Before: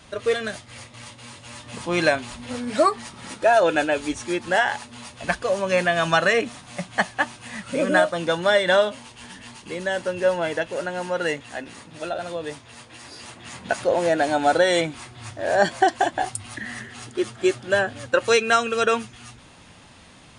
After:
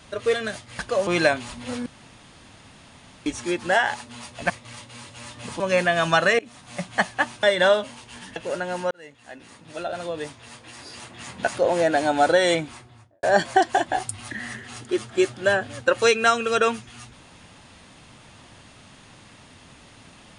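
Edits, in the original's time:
0.79–1.89 swap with 5.32–5.6
2.68–4.08 room tone
6.39–6.75 fade in, from -23.5 dB
7.43–8.51 cut
9.44–10.62 cut
11.17–12.29 fade in
14.82–15.49 studio fade out

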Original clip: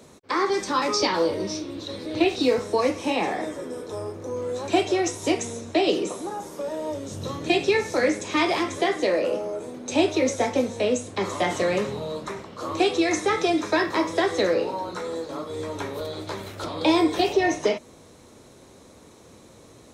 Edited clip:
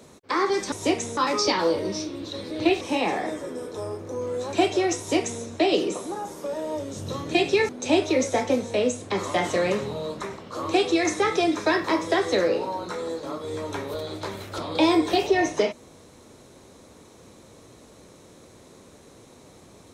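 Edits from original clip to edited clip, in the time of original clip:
2.36–2.96 cut
5.13–5.58 copy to 0.72
7.84–9.75 cut

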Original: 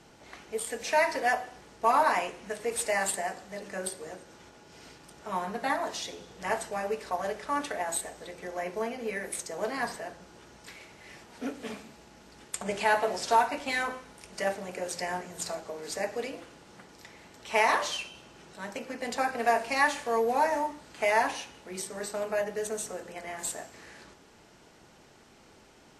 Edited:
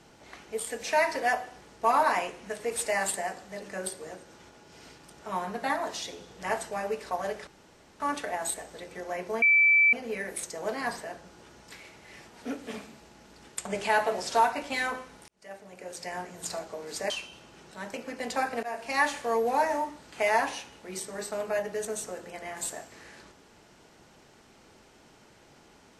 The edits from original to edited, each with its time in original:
7.47 insert room tone 0.53 s
8.89 add tone 2320 Hz -17 dBFS 0.51 s
14.24–15.49 fade in
16.06–17.92 cut
19.45–19.86 fade in, from -17 dB

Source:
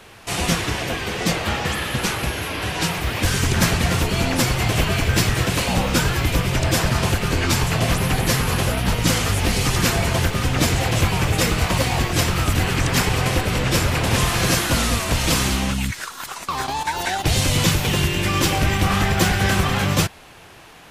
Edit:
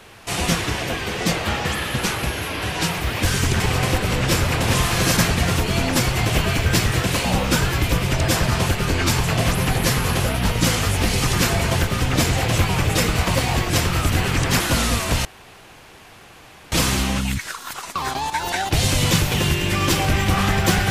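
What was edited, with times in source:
13.03–14.6 move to 3.6
15.25 insert room tone 1.47 s

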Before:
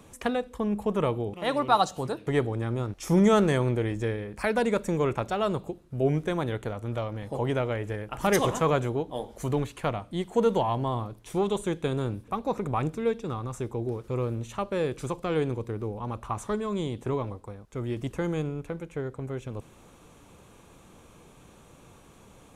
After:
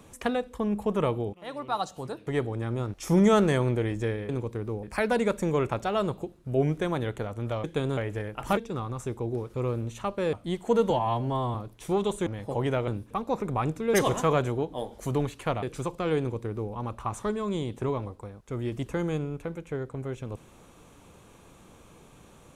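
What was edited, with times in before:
1.33–2.92 fade in, from -14 dB
7.1–7.71 swap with 11.72–12.05
8.31–10 swap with 13.11–14.87
10.57–11 stretch 1.5×
15.43–15.97 copy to 4.29

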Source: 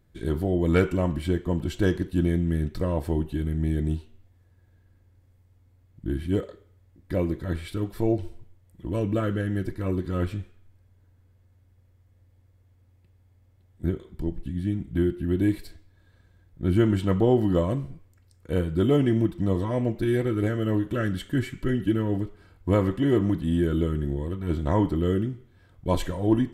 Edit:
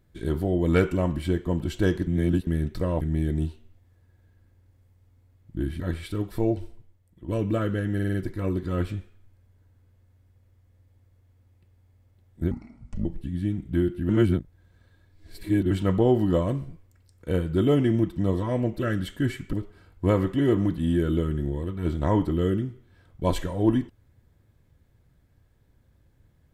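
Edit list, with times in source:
2.07–2.47 reverse
3.01–3.5 cut
6.29–7.42 cut
8.01–8.9 fade out, to -9 dB
9.56 stutter 0.05 s, 5 plays
13.93–14.27 speed 63%
15.31–16.93 reverse
20.01–20.92 cut
21.66–22.17 cut

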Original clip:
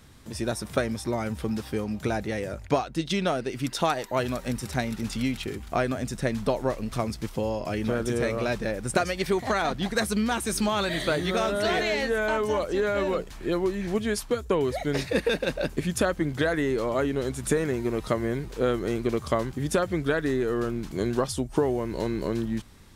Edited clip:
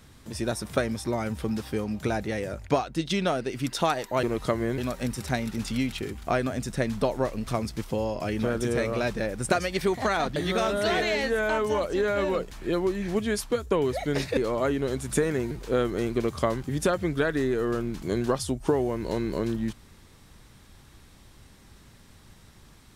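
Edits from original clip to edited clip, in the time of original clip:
9.81–11.15 cut
15.16–16.71 cut
17.85–18.4 move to 4.23

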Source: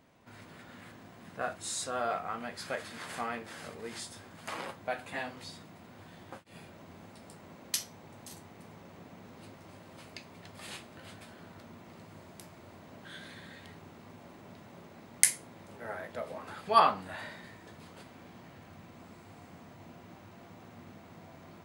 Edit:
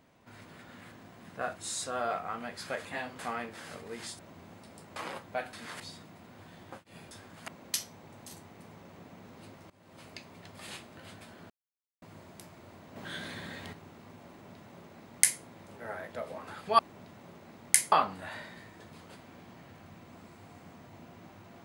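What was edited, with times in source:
2.85–3.12 swap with 5.06–5.4
4.12–4.49 swap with 6.71–7.48
9.7–10.05 fade in, from -19.5 dB
11.5–12.02 mute
12.96–13.73 gain +6.5 dB
14.28–15.41 copy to 16.79

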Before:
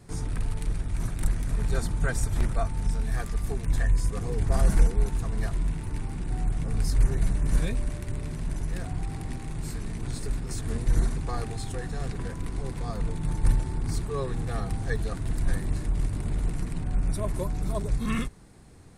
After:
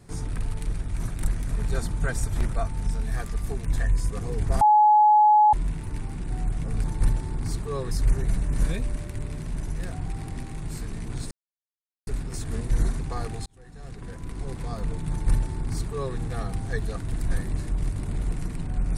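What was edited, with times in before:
4.61–5.53 bleep 846 Hz -13 dBFS
10.24 insert silence 0.76 s
11.63–12.74 fade in
13.27–14.34 copy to 6.84

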